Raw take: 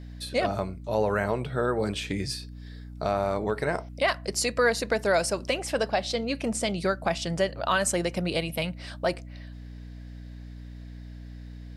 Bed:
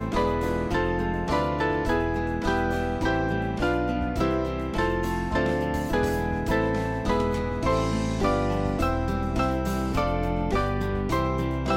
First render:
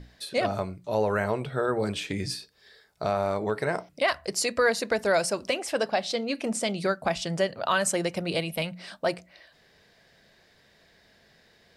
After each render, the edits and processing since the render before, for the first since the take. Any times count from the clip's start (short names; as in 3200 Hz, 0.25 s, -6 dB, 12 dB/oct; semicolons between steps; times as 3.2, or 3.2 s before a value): notches 60/120/180/240/300 Hz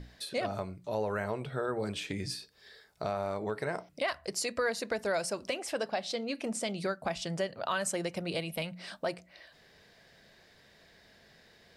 compressor 1.5:1, threshold -42 dBFS, peak gain reduction 8.5 dB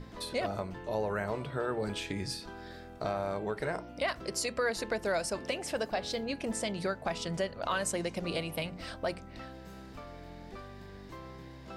add bed -21.5 dB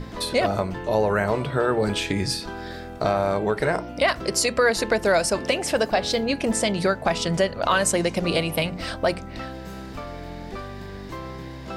gain +11.5 dB